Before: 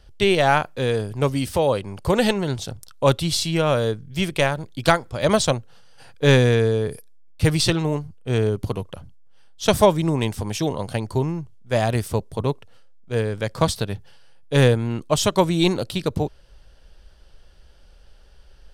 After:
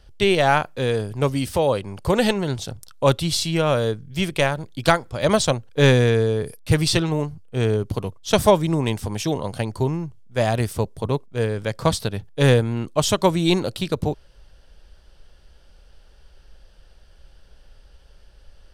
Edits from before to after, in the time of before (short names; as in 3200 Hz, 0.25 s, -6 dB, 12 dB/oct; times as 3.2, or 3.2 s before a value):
shorten pauses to 0.14 s